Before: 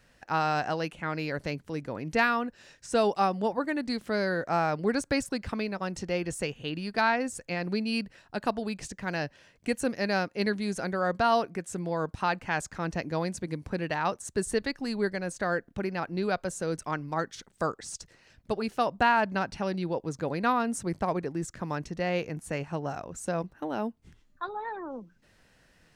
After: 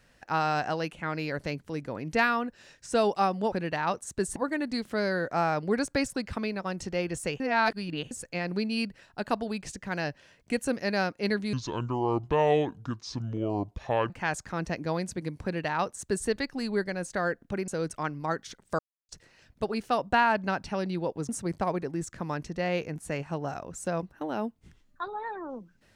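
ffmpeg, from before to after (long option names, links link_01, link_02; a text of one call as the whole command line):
ffmpeg -i in.wav -filter_complex "[0:a]asplit=11[link_01][link_02][link_03][link_04][link_05][link_06][link_07][link_08][link_09][link_10][link_11];[link_01]atrim=end=3.522[link_12];[link_02]atrim=start=13.698:end=14.542[link_13];[link_03]atrim=start=3.518:end=6.562[link_14];[link_04]atrim=start=6.558:end=7.272,asetpts=PTS-STARTPTS,areverse[link_15];[link_05]atrim=start=7.268:end=10.694[link_16];[link_06]atrim=start=10.69:end=12.36,asetpts=PTS-STARTPTS,asetrate=28665,aresample=44100,atrim=end_sample=113303,asetpts=PTS-STARTPTS[link_17];[link_07]atrim=start=12.356:end=15.942[link_18];[link_08]atrim=start=16.558:end=17.67,asetpts=PTS-STARTPTS,afade=type=out:start_time=1.108:duration=0.004:curve=hsin[link_19];[link_09]atrim=start=17.67:end=17.97,asetpts=PTS-STARTPTS,volume=0[link_20];[link_10]atrim=start=17.97:end=20.172,asetpts=PTS-STARTPTS,afade=type=in:duration=0.004:curve=hsin[link_21];[link_11]atrim=start=20.698[link_22];[link_12][link_13]acrossfade=duration=0.004:curve1=hsin:curve2=hsin[link_23];[link_23][link_14]acrossfade=duration=0.004:curve1=hsin:curve2=hsin[link_24];[link_24][link_15]acrossfade=duration=0.004:curve1=hsin:curve2=hsin[link_25];[link_25][link_16]acrossfade=duration=0.004:curve1=hsin:curve2=hsin[link_26];[link_26][link_17]acrossfade=duration=0.004:curve1=hsin:curve2=hsin[link_27];[link_27][link_18]acrossfade=duration=0.004:curve1=hsin:curve2=hsin[link_28];[link_19][link_20][link_21]concat=n=3:v=0:a=1[link_29];[link_28][link_29]acrossfade=duration=0.004:curve1=hsin:curve2=hsin[link_30];[link_30][link_22]acrossfade=duration=0.004:curve1=hsin:curve2=hsin" out.wav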